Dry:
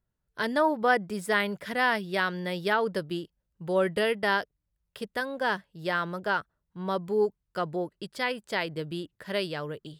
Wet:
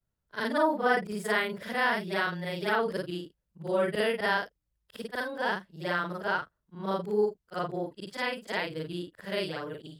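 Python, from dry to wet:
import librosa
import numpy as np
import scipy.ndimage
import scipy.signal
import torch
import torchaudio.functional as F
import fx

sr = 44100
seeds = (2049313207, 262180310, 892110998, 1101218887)

y = fx.frame_reverse(x, sr, frame_ms=114.0)
y = y * librosa.db_to_amplitude(1.5)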